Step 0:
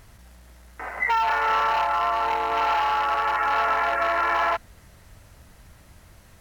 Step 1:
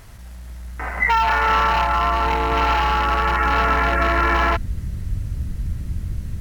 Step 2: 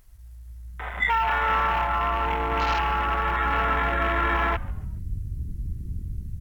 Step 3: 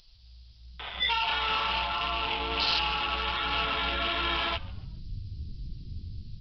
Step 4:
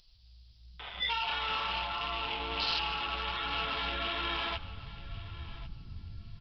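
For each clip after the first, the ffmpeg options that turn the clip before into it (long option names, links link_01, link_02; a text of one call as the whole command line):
ffmpeg -i in.wav -af "asubboost=boost=12:cutoff=220,volume=6dB" out.wav
ffmpeg -i in.wav -filter_complex "[0:a]aemphasis=mode=production:type=50kf,afwtdn=0.0447,asplit=4[link_01][link_02][link_03][link_04];[link_02]adelay=141,afreqshift=-130,volume=-21.5dB[link_05];[link_03]adelay=282,afreqshift=-260,volume=-29.5dB[link_06];[link_04]adelay=423,afreqshift=-390,volume=-37.4dB[link_07];[link_01][link_05][link_06][link_07]amix=inputs=4:normalize=0,volume=-6dB" out.wav
ffmpeg -i in.wav -af "aexciter=amount=13.2:drive=6.1:freq=2900,flanger=delay=5.9:depth=5.3:regen=-30:speed=1.4:shape=sinusoidal,aresample=11025,asoftclip=type=tanh:threshold=-16dB,aresample=44100,volume=-3dB" out.wav
ffmpeg -i in.wav -af "aecho=1:1:1096|2192:0.141|0.0268,volume=-5dB" out.wav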